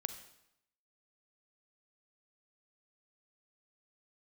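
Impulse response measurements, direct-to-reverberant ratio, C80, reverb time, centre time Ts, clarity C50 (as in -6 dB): 9.0 dB, 12.5 dB, 0.80 s, 11 ms, 10.5 dB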